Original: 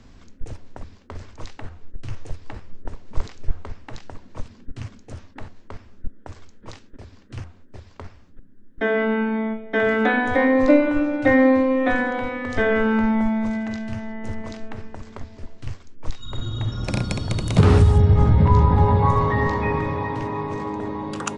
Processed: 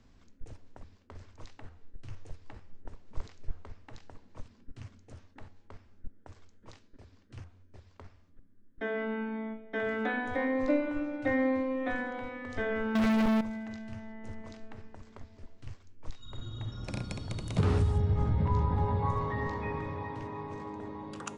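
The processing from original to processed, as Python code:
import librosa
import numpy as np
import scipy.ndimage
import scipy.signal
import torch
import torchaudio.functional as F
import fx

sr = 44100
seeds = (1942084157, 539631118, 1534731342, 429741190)

y = fx.leveller(x, sr, passes=5, at=(12.95, 13.41))
y = fx.comb_fb(y, sr, f0_hz=92.0, decay_s=1.7, harmonics='odd', damping=0.0, mix_pct=50)
y = y * 10.0 ** (-7.0 / 20.0)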